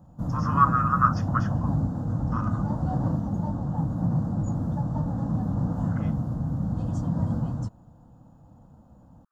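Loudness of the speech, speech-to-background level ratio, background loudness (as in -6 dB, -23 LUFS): -25.5 LUFS, 2.5 dB, -28.0 LUFS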